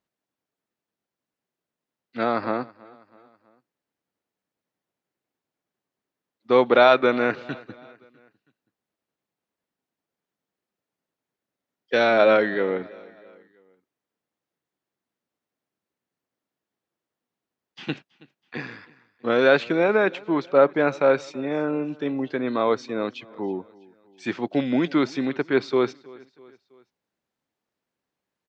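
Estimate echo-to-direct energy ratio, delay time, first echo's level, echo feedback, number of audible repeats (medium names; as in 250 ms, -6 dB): -22.0 dB, 325 ms, -23.0 dB, 51%, 3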